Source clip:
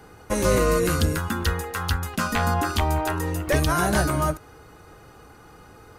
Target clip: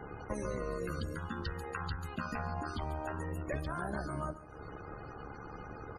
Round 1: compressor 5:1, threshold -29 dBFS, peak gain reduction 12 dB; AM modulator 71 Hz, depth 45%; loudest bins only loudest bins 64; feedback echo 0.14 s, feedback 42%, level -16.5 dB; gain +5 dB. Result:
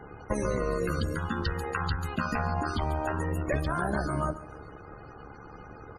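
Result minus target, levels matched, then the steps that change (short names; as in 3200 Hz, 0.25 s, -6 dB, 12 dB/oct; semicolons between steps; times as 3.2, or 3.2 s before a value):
compressor: peak gain reduction -8.5 dB
change: compressor 5:1, threshold -39.5 dBFS, peak gain reduction 20.5 dB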